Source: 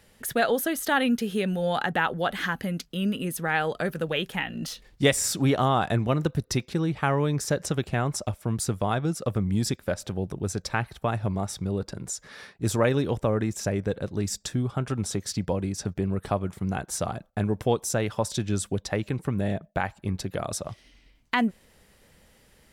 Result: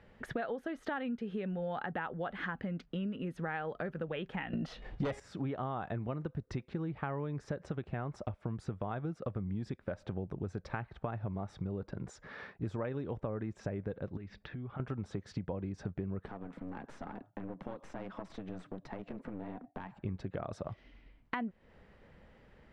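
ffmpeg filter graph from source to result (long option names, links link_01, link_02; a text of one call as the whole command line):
ffmpeg -i in.wav -filter_complex "[0:a]asettb=1/sr,asplit=3[link_01][link_02][link_03];[link_01]atrim=end=4.534[link_04];[link_02]atrim=start=4.53:end=5.2,asetpts=PTS-STARTPTS,afade=type=in:duration=0.004:curve=qsin,afade=type=out:start_time=0.666:duration=0.004:curve=qsin,equalizer=frequency=700:width_type=o:width=0.4:gain=6.5,bandreject=frequency=411.8:width_type=h:width=4,bandreject=frequency=823.6:width_type=h:width=4,bandreject=frequency=1235.4:width_type=h:width=4,bandreject=frequency=1647.2:width_type=h:width=4,bandreject=frequency=2059:width_type=h:width=4,bandreject=frequency=2470.8:width_type=h:width=4,bandreject=frequency=2882.6:width_type=h:width=4,bandreject=frequency=3294.4:width_type=h:width=4,bandreject=frequency=3706.2:width_type=h:width=4,aeval=exprs='0.422*sin(PI/2*2.51*val(0)/0.422)':channel_layout=same[link_05];[link_03]atrim=start=5.196[link_06];[link_04][link_05]acrossfade=duration=0.004:curve1=hsin:curve2=qsin[link_07];[link_07][link_06]acrossfade=duration=0.004:curve1=qsin:curve2=hsin,asettb=1/sr,asplit=3[link_08][link_09][link_10];[link_08]atrim=end=14.174[link_11];[link_09]atrim=start=14.17:end=14.8,asetpts=PTS-STARTPTS,afade=type=in:duration=0.004:curve=qsin,afade=type=out:start_time=0.626:duration=0.004:curve=qsin,lowpass=frequency=4100:width=0.5412,lowpass=frequency=4100:width=1.3066,equalizer=frequency=2200:width=1.4:gain=6.5,acompressor=threshold=-40dB:ratio=6:attack=3.2:release=140:knee=1:detection=peak[link_12];[link_10]atrim=start=14.796[link_13];[link_11][link_12]acrossfade=duration=0.004:curve1=hsin:curve2=qsin[link_14];[link_14][link_13]acrossfade=duration=0.004:curve1=qsin:curve2=hsin,asettb=1/sr,asplit=3[link_15][link_16][link_17];[link_15]atrim=end=16.274[link_18];[link_16]atrim=start=16.27:end=19.94,asetpts=PTS-STARTPTS,afade=type=in:duration=0.004:curve=qsin,afade=type=out:start_time=3.666:duration=0.004:curve=qsin,acompressor=threshold=-38dB:ratio=4:attack=3.2:release=140:knee=1:detection=peak,afreqshift=88,aeval=exprs='clip(val(0),-1,0.00447)':channel_layout=same[link_19];[link_17]atrim=start=19.936[link_20];[link_18][link_19]acrossfade=duration=0.004:curve1=hsin:curve2=qsin[link_21];[link_21][link_20]acrossfade=duration=0.004:curve1=qsin:curve2=hsin,lowpass=1900,acompressor=threshold=-35dB:ratio=6" out.wav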